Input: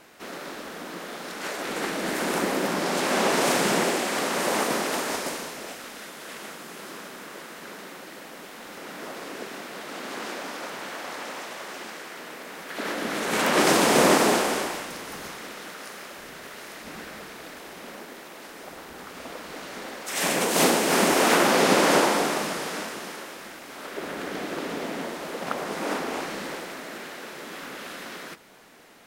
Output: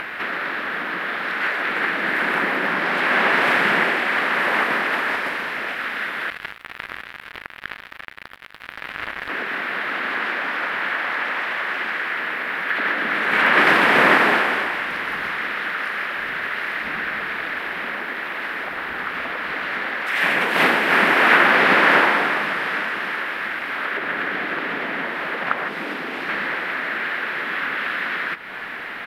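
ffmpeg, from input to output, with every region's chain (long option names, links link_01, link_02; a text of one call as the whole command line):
ffmpeg -i in.wav -filter_complex "[0:a]asettb=1/sr,asplit=3[link_01][link_02][link_03];[link_01]atrim=end=6.304[link_04];[link_02]atrim=start=6.3:end=9.29,asetpts=PTS-STARTPTS,afade=type=in:duration=0.004:curve=qsin,afade=type=out:start_time=2.986:duration=0.004:curve=qsin,aeval=exprs='val(0)+0.00316*(sin(2*PI*50*n/s)+sin(2*PI*2*50*n/s)/2+sin(2*PI*3*50*n/s)/3+sin(2*PI*4*50*n/s)/4+sin(2*PI*5*50*n/s)/5)':channel_layout=same,acrusher=bits=4:mix=0:aa=0.5[link_05];[link_03]atrim=start=9.286[link_06];[link_04][link_05]acrossfade=duration=0.004:curve1=hsin:curve2=qsin[link_07];[link_07][link_06]acrossfade=duration=0.004:curve1=qsin:curve2=hsin,asettb=1/sr,asplit=3[link_08][link_09][link_10];[link_08]atrim=end=25.684[link_11];[link_09]atrim=start=25.68:end=26.29,asetpts=PTS-STARTPTS,afade=type=in:duration=0.004:curve=qsin,afade=type=out:start_time=0.606:duration=0.004:curve=qsin,highpass=frequency=120:poles=1,acrossover=split=440|3000[link_12][link_13][link_14];[link_13]acompressor=threshold=-40dB:ratio=4:attack=3.2:release=140:knee=2.83:detection=peak[link_15];[link_12][link_15][link_14]amix=inputs=3:normalize=0[link_16];[link_10]atrim=start=26.286[link_17];[link_11][link_16]acrossfade=duration=0.004:curve1=hsin:curve2=qsin[link_18];[link_18][link_17]acrossfade=duration=0.004:curve1=qsin:curve2=hsin,equalizer=frequency=12000:width=2.6:gain=5.5,acompressor=mode=upward:threshold=-24dB:ratio=2.5,firequalizer=gain_entry='entry(510,0);entry(1700,15);entry(6400,-18);entry(11000,-14)':delay=0.05:min_phase=1,volume=-1.5dB" out.wav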